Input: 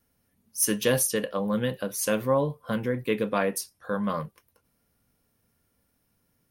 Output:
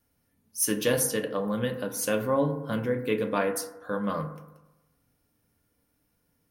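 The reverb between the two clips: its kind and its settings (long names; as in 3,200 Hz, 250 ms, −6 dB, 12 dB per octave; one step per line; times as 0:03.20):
feedback delay network reverb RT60 1 s, low-frequency decay 1×, high-frequency decay 0.3×, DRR 5.5 dB
level −2 dB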